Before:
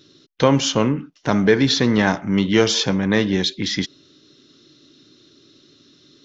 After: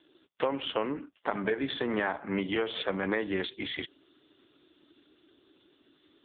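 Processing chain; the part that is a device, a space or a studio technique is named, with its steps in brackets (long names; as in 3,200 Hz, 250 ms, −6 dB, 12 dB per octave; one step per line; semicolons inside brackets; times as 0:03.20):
voicemail (band-pass filter 410–3,100 Hz; downward compressor 8 to 1, threshold −24 dBFS, peak gain reduction 12.5 dB; AMR narrowband 5.15 kbit/s 8,000 Hz)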